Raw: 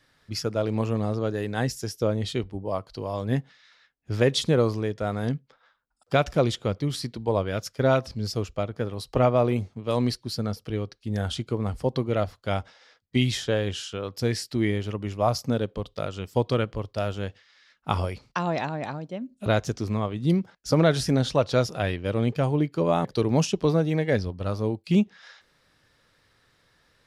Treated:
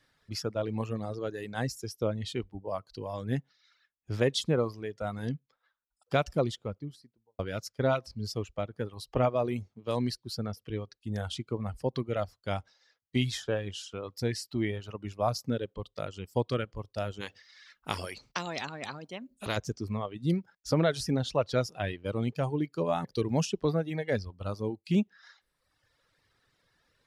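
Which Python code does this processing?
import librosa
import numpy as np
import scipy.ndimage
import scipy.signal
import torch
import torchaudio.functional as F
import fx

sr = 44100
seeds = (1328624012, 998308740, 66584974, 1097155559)

y = fx.studio_fade_out(x, sr, start_s=6.29, length_s=1.1)
y = fx.spectral_comp(y, sr, ratio=2.0, at=(17.2, 19.56), fade=0.02)
y = fx.dereverb_blind(y, sr, rt60_s=1.1)
y = y * librosa.db_to_amplitude(-5.0)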